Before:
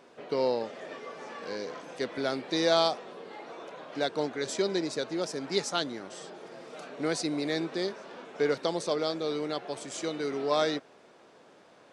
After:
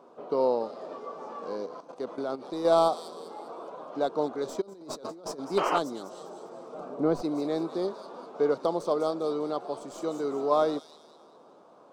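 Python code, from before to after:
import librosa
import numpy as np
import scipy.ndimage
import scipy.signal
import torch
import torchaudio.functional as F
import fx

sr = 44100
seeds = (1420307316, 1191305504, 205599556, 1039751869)

y = fx.tracing_dist(x, sr, depth_ms=0.041)
y = fx.tilt_eq(y, sr, slope=-2.5, at=(6.74, 7.22))
y = fx.echo_wet_highpass(y, sr, ms=200, feedback_pct=43, hz=4700.0, wet_db=-4)
y = fx.level_steps(y, sr, step_db=11, at=(1.66, 2.65))
y = fx.spec_paint(y, sr, seeds[0], shape='noise', start_s=5.57, length_s=0.22, low_hz=280.0, high_hz=3200.0, level_db=-26.0)
y = fx.curve_eq(y, sr, hz=(100.0, 210.0, 1200.0, 1800.0, 3700.0), db=(0, 7, 11, -9, -3))
y = fx.over_compress(y, sr, threshold_db=-35.0, ratio=-1.0, at=(4.6, 5.38), fade=0.02)
y = y * 10.0 ** (-6.5 / 20.0)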